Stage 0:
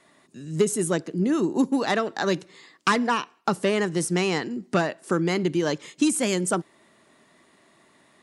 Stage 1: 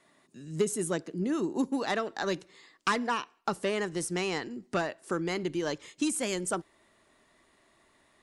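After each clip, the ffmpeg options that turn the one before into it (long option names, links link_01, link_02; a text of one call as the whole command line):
ffmpeg -i in.wav -af "asubboost=boost=10:cutoff=52,volume=-6dB" out.wav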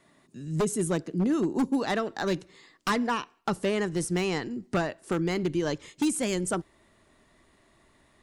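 ffmpeg -i in.wav -af "lowshelf=frequency=210:gain=11,acontrast=77,aeval=exprs='0.224*(abs(mod(val(0)/0.224+3,4)-2)-1)':channel_layout=same,volume=-6dB" out.wav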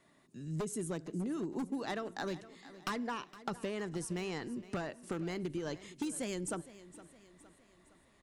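ffmpeg -i in.wav -af "acompressor=threshold=-29dB:ratio=6,aecho=1:1:463|926|1389|1852:0.141|0.0692|0.0339|0.0166,volume=-5.5dB" out.wav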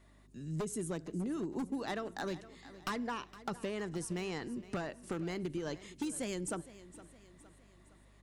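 ffmpeg -i in.wav -af "aeval=exprs='0.0376*(abs(mod(val(0)/0.0376+3,4)-2)-1)':channel_layout=same,aeval=exprs='val(0)+0.000794*(sin(2*PI*50*n/s)+sin(2*PI*2*50*n/s)/2+sin(2*PI*3*50*n/s)/3+sin(2*PI*4*50*n/s)/4+sin(2*PI*5*50*n/s)/5)':channel_layout=same" out.wav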